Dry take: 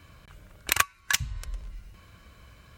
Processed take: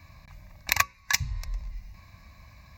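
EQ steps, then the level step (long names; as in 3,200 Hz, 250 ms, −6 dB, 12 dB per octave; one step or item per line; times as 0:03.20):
mains-hum notches 60/120/180/240/300/360/420/480/540 Hz
phaser with its sweep stopped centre 2,100 Hz, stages 8
+3.5 dB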